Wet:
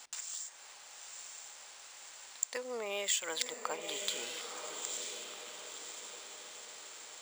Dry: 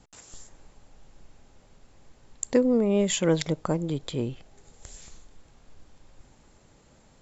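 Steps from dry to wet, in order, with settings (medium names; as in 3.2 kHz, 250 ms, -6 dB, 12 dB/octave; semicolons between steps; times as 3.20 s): high-pass 760 Hz 12 dB/octave; tilt EQ +4 dB/octave; compression 2:1, threshold -49 dBFS, peak gain reduction 19 dB; echo that smears into a reverb 968 ms, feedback 52%, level -6 dB; decimation joined by straight lines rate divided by 3×; trim +7.5 dB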